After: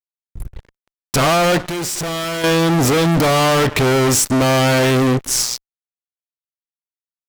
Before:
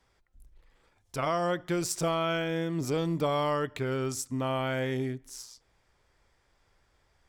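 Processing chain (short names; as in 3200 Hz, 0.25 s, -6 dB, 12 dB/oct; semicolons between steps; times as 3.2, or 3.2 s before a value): fuzz box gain 46 dB, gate -54 dBFS; 1.58–2.44 tube stage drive 22 dB, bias 0.6; mismatched tape noise reduction decoder only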